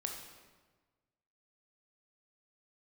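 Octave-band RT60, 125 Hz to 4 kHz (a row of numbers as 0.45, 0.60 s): 1.7, 1.5, 1.4, 1.3, 1.1, 1.0 s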